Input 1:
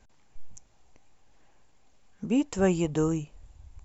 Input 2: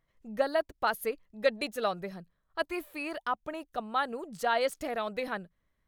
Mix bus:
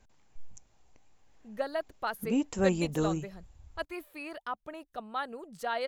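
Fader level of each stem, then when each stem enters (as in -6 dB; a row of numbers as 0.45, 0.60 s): -3.5, -5.0 dB; 0.00, 1.20 s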